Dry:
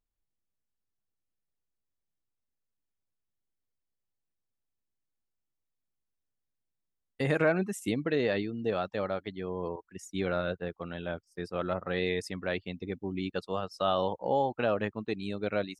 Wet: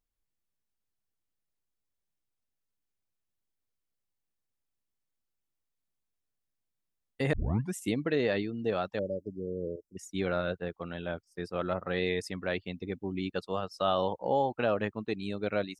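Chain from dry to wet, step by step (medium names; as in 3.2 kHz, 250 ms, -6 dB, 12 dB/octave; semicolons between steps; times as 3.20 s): 7.33 s: tape start 0.41 s; 8.99–9.97 s: brick-wall FIR band-stop 620–4800 Hz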